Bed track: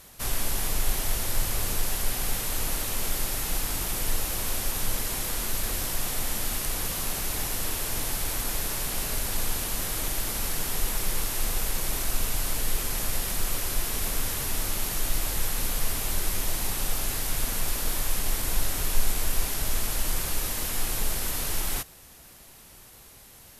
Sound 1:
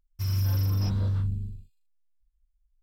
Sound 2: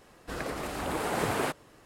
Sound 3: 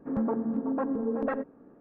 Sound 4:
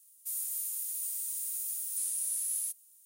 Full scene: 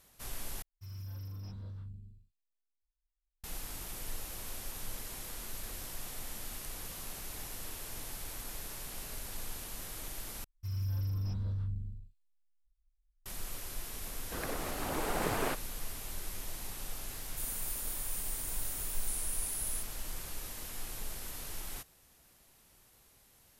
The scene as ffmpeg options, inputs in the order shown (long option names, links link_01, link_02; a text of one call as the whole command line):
ffmpeg -i bed.wav -i cue0.wav -i cue1.wav -i cue2.wav -i cue3.wav -filter_complex "[1:a]asplit=2[link_01][link_02];[0:a]volume=-13.5dB[link_03];[link_02]lowshelf=frequency=100:gain=9[link_04];[2:a]aeval=exprs='if(lt(val(0),0),0.708*val(0),val(0))':channel_layout=same[link_05];[link_03]asplit=3[link_06][link_07][link_08];[link_06]atrim=end=0.624[link_09];[link_01]atrim=end=2.82,asetpts=PTS-STARTPTS,volume=-18dB[link_10];[link_07]atrim=start=3.436:end=10.444[link_11];[link_04]atrim=end=2.82,asetpts=PTS-STARTPTS,volume=-13.5dB[link_12];[link_08]atrim=start=13.256[link_13];[link_05]atrim=end=1.85,asetpts=PTS-STARTPTS,volume=-3dB,afade=type=in:duration=0.004:curve=hsin,afade=type=out:start_time=1.846:duration=0.004:curve=hsin,adelay=14030[link_14];[4:a]atrim=end=3.05,asetpts=PTS-STARTPTS,volume=-5dB,afade=type=in:duration=0.004:curve=hsin,afade=type=out:start_time=3.046:duration=0.004:curve=hsin,adelay=17110[link_15];[link_09][link_10]acrossfade=duration=0.004:curve1=hsin:curve2=hsin[link_16];[link_16][link_11]acrossfade=duration=0.004:curve1=hsin:curve2=hsin[link_17];[link_17][link_12]acrossfade=duration=0.004:curve1=hsin:curve2=hsin[link_18];[link_18][link_13]acrossfade=duration=0.004:curve1=hsin:curve2=hsin[link_19];[link_19][link_14][link_15]amix=inputs=3:normalize=0" out.wav